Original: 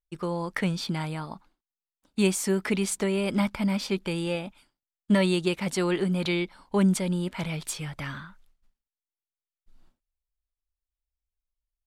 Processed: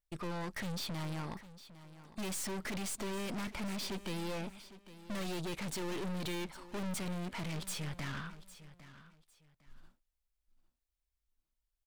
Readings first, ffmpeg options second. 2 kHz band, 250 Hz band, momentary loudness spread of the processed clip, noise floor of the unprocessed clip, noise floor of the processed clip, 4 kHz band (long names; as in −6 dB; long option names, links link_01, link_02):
−10.0 dB, −14.0 dB, 16 LU, below −85 dBFS, below −85 dBFS, −8.5 dB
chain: -af "aeval=exprs='(tanh(112*val(0)+0.55)-tanh(0.55))/112':channel_layout=same,aecho=1:1:805|1610:0.158|0.0396,volume=3dB"